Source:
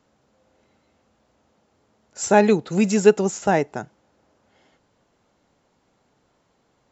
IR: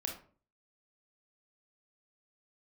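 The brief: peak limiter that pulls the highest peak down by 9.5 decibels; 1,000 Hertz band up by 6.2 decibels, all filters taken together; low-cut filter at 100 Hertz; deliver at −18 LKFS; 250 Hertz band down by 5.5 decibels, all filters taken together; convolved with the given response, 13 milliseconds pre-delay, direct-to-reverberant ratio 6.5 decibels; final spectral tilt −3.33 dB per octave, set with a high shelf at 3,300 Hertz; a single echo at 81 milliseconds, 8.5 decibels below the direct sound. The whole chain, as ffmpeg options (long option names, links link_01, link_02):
-filter_complex "[0:a]highpass=100,equalizer=frequency=250:width_type=o:gain=-7.5,equalizer=frequency=1000:width_type=o:gain=8.5,highshelf=frequency=3300:gain=5.5,alimiter=limit=-9dB:level=0:latency=1,aecho=1:1:81:0.376,asplit=2[link_01][link_02];[1:a]atrim=start_sample=2205,adelay=13[link_03];[link_02][link_03]afir=irnorm=-1:irlink=0,volume=-7dB[link_04];[link_01][link_04]amix=inputs=2:normalize=0,volume=3.5dB"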